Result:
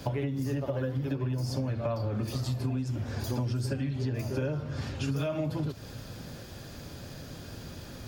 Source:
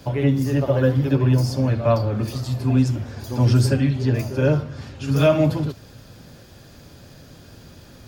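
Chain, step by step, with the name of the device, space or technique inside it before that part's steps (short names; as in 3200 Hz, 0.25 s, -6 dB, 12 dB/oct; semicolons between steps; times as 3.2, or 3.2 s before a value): serial compression, leveller first (compressor 2.5:1, threshold -19 dBFS, peak gain reduction 6 dB; compressor 6:1, threshold -30 dBFS, peak gain reduction 13 dB); gain +1.5 dB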